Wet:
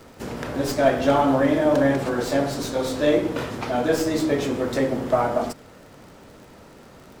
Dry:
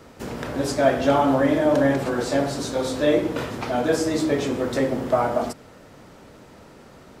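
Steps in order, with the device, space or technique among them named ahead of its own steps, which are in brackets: record under a worn stylus (tracing distortion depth 0.047 ms; crackle 51/s -39 dBFS; pink noise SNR 40 dB)

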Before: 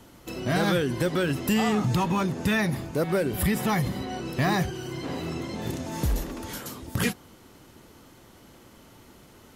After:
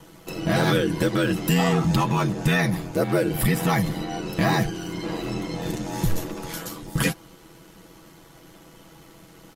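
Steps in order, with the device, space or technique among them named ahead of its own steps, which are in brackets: ring-modulated robot voice (ring modulator 43 Hz; comb 6.1 ms, depth 67%); gain +4.5 dB

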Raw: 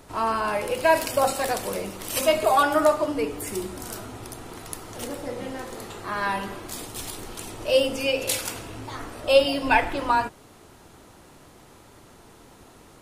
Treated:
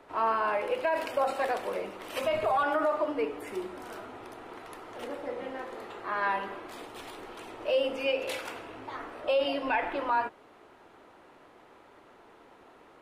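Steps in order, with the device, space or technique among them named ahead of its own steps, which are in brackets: DJ mixer with the lows and highs turned down (three-band isolator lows -16 dB, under 290 Hz, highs -19 dB, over 3100 Hz; limiter -16.5 dBFS, peak gain reduction 10.5 dB); 2.24–2.64 resonant low shelf 200 Hz +11.5 dB, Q 1.5; gain -2 dB

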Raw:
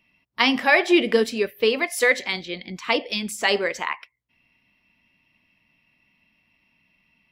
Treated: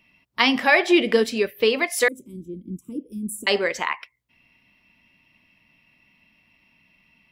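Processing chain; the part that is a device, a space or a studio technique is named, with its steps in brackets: parallel compression (in parallel at -1 dB: compressor, threshold -30 dBFS, peak gain reduction 17 dB); 2.08–3.47 on the sum: elliptic band-stop 320–9100 Hz, stop band 40 dB; gain -1 dB

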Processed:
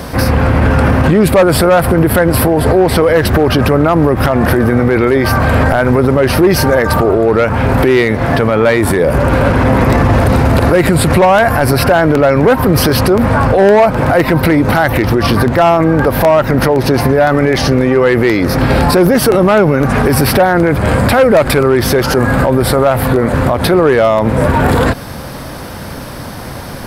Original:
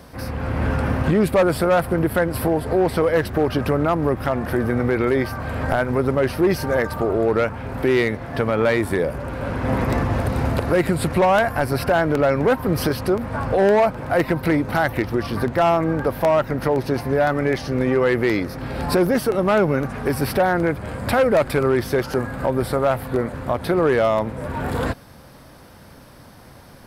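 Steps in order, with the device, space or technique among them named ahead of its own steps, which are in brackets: loud club master (compressor 1.5:1, threshold -24 dBFS, peak gain reduction 4 dB; hard clip -12 dBFS, distortion -43 dB; maximiser +20.5 dB); gain -1 dB

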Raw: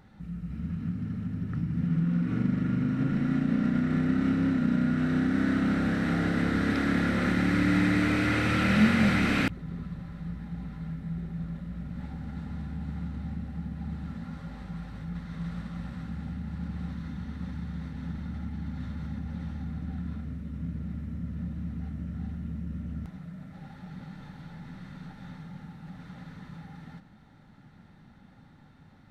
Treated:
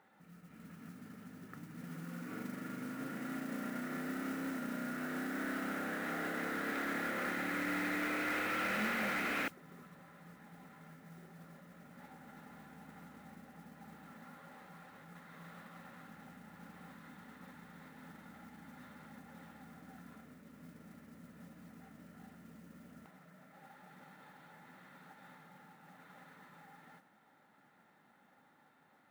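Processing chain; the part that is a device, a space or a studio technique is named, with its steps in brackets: carbon microphone (BPF 450–2700 Hz; soft clip -24.5 dBFS, distortion -19 dB; modulation noise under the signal 17 dB); gain -4 dB

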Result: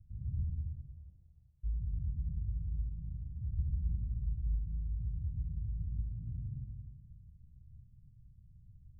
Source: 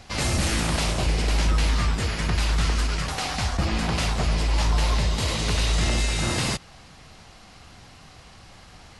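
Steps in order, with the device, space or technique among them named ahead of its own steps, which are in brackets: 0.5–1.63 HPF 430 Hz -> 940 Hz 24 dB/oct; club heard from the street (limiter -19 dBFS, peak gain reduction 6 dB; LPF 130 Hz 24 dB/oct; reverb RT60 1.5 s, pre-delay 66 ms, DRR 1.5 dB); tilt shelf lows -3.5 dB; gain -4 dB

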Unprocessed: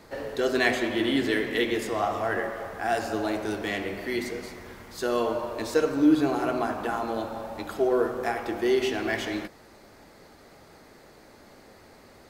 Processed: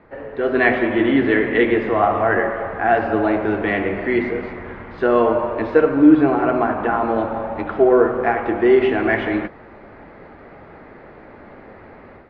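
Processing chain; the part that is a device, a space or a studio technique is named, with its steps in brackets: action camera in a waterproof case (LPF 2300 Hz 24 dB/oct; AGC gain up to 10 dB; gain +1 dB; AAC 64 kbps 32000 Hz)

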